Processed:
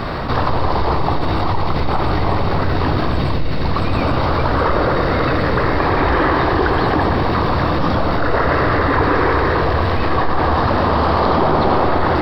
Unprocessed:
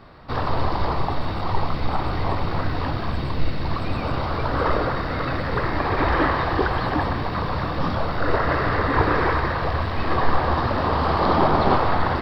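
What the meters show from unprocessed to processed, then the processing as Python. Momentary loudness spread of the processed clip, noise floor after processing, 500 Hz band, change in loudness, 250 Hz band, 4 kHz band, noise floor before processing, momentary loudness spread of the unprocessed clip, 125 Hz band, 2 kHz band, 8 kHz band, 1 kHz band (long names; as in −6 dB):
4 LU, −17 dBFS, +7.0 dB, +6.0 dB, +7.0 dB, +6.0 dB, −26 dBFS, 7 LU, +6.0 dB, +5.5 dB, can't be measured, +5.5 dB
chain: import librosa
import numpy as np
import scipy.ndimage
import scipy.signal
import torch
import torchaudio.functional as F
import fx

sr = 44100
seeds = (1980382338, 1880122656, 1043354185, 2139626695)

y = fx.echo_banded(x, sr, ms=114, feedback_pct=78, hz=380.0, wet_db=-5.0)
y = fx.env_flatten(y, sr, amount_pct=70)
y = y * 10.0 ** (-1.0 / 20.0)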